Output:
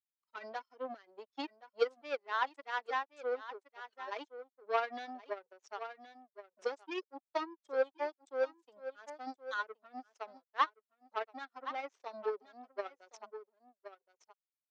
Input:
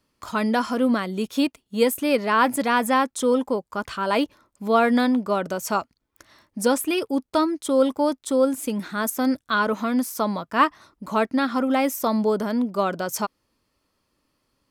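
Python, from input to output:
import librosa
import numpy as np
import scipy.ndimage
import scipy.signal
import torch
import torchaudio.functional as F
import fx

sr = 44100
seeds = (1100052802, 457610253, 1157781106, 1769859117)

y = fx.bin_expand(x, sr, power=2.0)
y = fx.power_curve(y, sr, exponent=2.0)
y = scipy.signal.sosfilt(scipy.signal.ellip(3, 1.0, 40, [390.0, 6000.0], 'bandpass', fs=sr, output='sos'), y)
y = fx.high_shelf(y, sr, hz=3900.0, db=-9.5)
y = y + 10.0 ** (-17.0 / 20.0) * np.pad(y, (int(1071 * sr / 1000.0), 0))[:len(y)]
y = fx.band_squash(y, sr, depth_pct=40)
y = F.gain(torch.from_numpy(y), -1.0).numpy()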